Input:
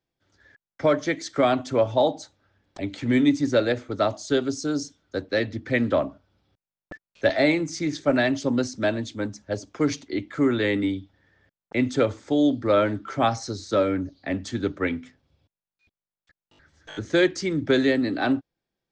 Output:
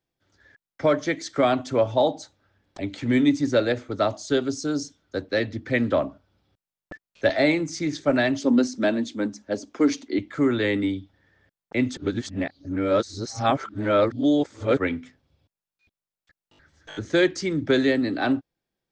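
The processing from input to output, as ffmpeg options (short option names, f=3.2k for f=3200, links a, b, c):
-filter_complex "[0:a]asettb=1/sr,asplit=3[a][b][c];[a]atrim=end=8.394[d];[b]atrim=start=8.39:end=10.19,asetpts=PTS-STARTPTS,afade=t=in:d=0.004:c=qsin,afade=t=out:st=1.796:d=0.004:c=qsin,lowshelf=f=180:t=q:w=3:g=-7.5[e];[c]atrim=start=10.186[f];[d][e]acrossfade=d=0.004:c1=hsin:c2=qsin[g];[g][f]acrossfade=d=0.004:c1=qsin:c2=hsin,asplit=3[h][i][j];[h]atrim=end=11.972[k];[i]atrim=start=11.968:end=14.772,asetpts=PTS-STARTPTS,areverse[l];[j]atrim=start=14.768[m];[k][l]acrossfade=d=0.004:c1=hsin:c2=hsin[n];[n][m]acrossfade=d=0.004:c1=hsin:c2=hsin"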